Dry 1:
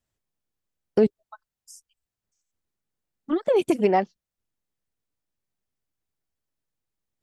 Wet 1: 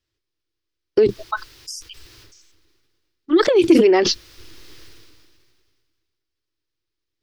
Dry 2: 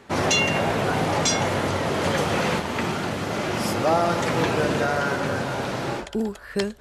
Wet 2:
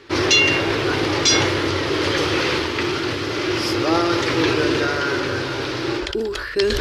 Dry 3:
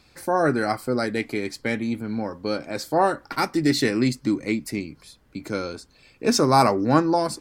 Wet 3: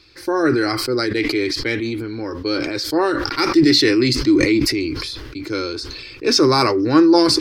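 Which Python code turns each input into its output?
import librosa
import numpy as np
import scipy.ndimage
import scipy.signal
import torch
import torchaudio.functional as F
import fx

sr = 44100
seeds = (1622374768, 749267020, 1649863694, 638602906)

y = fx.curve_eq(x, sr, hz=(120.0, 200.0, 330.0, 700.0, 1100.0, 5100.0, 7400.0), db=(0, -16, 8, -10, -1, 7, -7))
y = fx.sustainer(y, sr, db_per_s=29.0)
y = y * librosa.db_to_amplitude(2.5)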